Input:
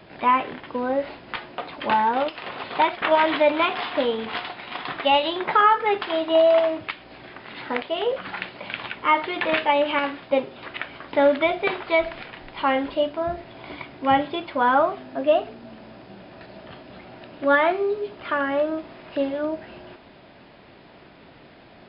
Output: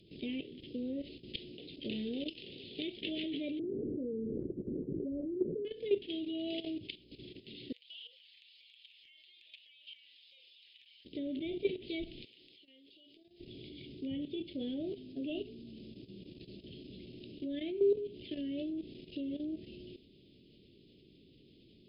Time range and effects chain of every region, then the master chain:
3.59–5.65 steep low-pass 570 Hz 48 dB/oct + fast leveller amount 50%
7.72–11.05 HPF 1100 Hz 24 dB/oct + comb 6.1 ms, depth 72% + compressor 4:1, threshold -41 dBFS
12.25–13.4 HPF 1400 Hz 6 dB/oct + compressor 10:1, threshold -41 dBFS
whole clip: elliptic band-stop 400–3100 Hz, stop band 60 dB; treble ducked by the level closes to 2500 Hz, closed at -26 dBFS; level quantiser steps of 12 dB; gain -1.5 dB

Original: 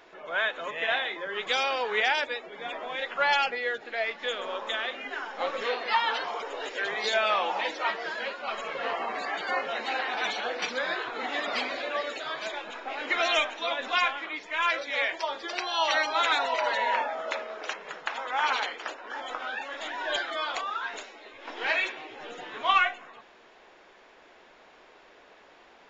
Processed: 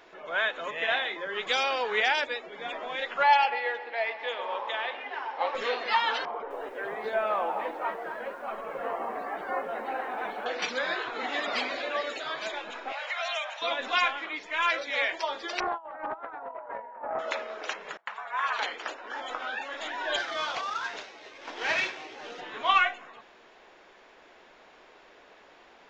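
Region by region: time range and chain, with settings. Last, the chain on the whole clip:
3.23–5.55 speaker cabinet 430–4700 Hz, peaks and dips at 900 Hz +9 dB, 1400 Hz -6 dB, 3500 Hz -5 dB + dark delay 0.124 s, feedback 56%, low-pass 3300 Hz, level -13 dB + mismatched tape noise reduction decoder only
6.25–10.46 LPF 1200 Hz + lo-fi delay 0.255 s, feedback 35%, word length 9-bit, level -11.5 dB
12.92–13.62 steep high-pass 530 Hz 72 dB/oct + compressor 2.5:1, threshold -31 dBFS
15.6–17.19 LPF 1300 Hz 24 dB/oct + negative-ratio compressor -35 dBFS, ratio -0.5 + Doppler distortion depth 0.24 ms
17.97–18.59 bell 4700 Hz -11.5 dB 2.4 oct + frequency shift +190 Hz + expander -36 dBFS
20.18–22.41 CVSD 32 kbps + low shelf 100 Hz -10.5 dB
whole clip: dry

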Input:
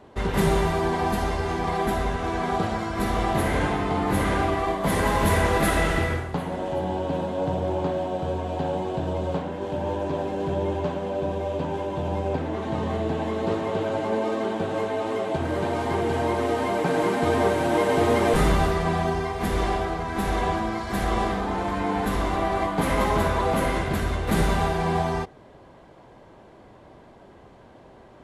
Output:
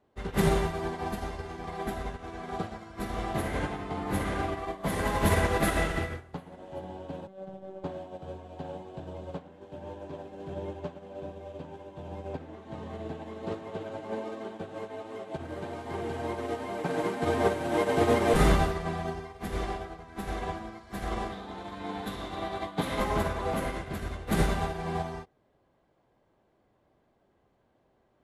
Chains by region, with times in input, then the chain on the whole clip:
7.27–7.84 high shelf 2100 Hz -6.5 dB + robotiser 191 Hz
21.32–23 HPF 69 Hz + bell 3700 Hz +10.5 dB 0.37 oct
whole clip: notch 960 Hz, Q 19; upward expander 2.5:1, over -31 dBFS

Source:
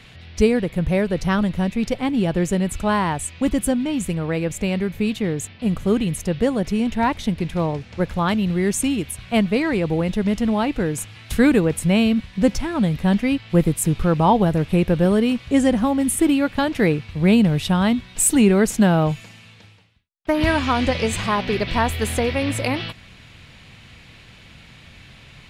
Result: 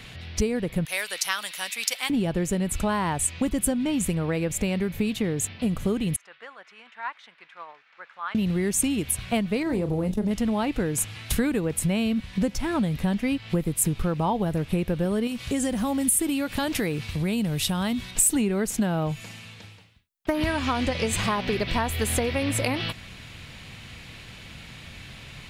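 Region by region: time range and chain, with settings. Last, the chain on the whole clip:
0.85–2.1 HPF 1400 Hz + high shelf 3800 Hz +11.5 dB
6.16–8.35 tremolo 11 Hz, depth 31% + ladder band-pass 1600 Hz, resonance 40%
9.63–10.31 bell 2400 Hz -10.5 dB 2.6 oct + doubler 33 ms -9 dB + core saturation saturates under 180 Hz
15.27–18.11 high shelf 4000 Hz +9.5 dB + compressor 2.5:1, threshold -26 dBFS
whole clip: compressor 6:1, threshold -24 dBFS; high shelf 8800 Hz +8 dB; gain +2 dB

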